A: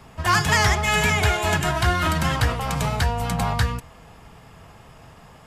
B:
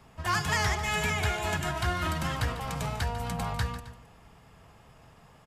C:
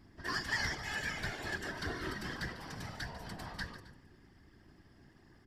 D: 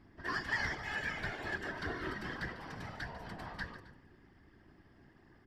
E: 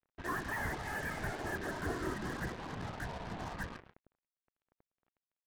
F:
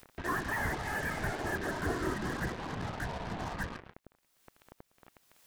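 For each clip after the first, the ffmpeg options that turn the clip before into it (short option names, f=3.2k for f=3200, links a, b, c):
-af "aecho=1:1:147|265:0.211|0.119,volume=-9dB"
-af "aeval=exprs='val(0)+0.00398*(sin(2*PI*60*n/s)+sin(2*PI*2*60*n/s)/2+sin(2*PI*3*60*n/s)/3+sin(2*PI*4*60*n/s)/4+sin(2*PI*5*60*n/s)/5)':c=same,superequalizer=6b=3.55:11b=3.16:13b=1.58:14b=3.16,afftfilt=real='hypot(re,im)*cos(2*PI*random(0))':imag='hypot(re,im)*sin(2*PI*random(1))':win_size=512:overlap=0.75,volume=-7.5dB"
-af "bass=f=250:g=-3,treble=f=4k:g=-12,volume=1dB"
-af "aresample=8000,asoftclip=type=hard:threshold=-32dB,aresample=44100,lowpass=1.3k,acrusher=bits=7:mix=0:aa=0.5,volume=4dB"
-af "acompressor=mode=upward:threshold=-41dB:ratio=2.5,volume=4dB"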